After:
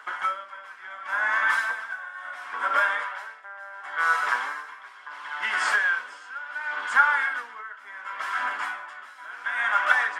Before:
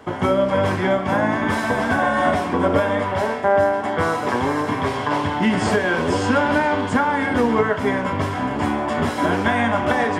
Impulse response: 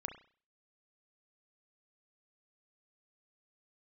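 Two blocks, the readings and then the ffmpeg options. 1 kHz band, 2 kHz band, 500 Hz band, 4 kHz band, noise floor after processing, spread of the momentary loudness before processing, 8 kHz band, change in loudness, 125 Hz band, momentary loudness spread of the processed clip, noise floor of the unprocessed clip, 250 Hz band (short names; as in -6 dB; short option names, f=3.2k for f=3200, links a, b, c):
-7.0 dB, 0.0 dB, -24.0 dB, -7.0 dB, -46 dBFS, 4 LU, -7.0 dB, -5.5 dB, under -40 dB, 19 LU, -26 dBFS, under -35 dB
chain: -af "aphaser=in_gain=1:out_gain=1:delay=4.7:decay=0.25:speed=0.59:type=triangular,highpass=f=1.4k:t=q:w=3.5,aeval=exprs='val(0)*pow(10,-20*(0.5-0.5*cos(2*PI*0.71*n/s))/20)':c=same,volume=-3.5dB"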